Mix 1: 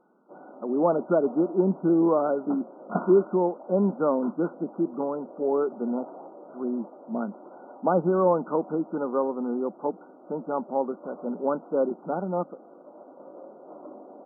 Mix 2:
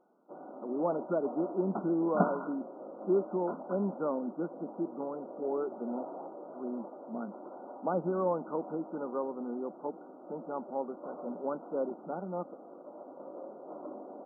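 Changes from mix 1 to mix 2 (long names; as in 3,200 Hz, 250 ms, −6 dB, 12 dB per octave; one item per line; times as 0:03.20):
speech −9.0 dB
second sound: entry −0.75 s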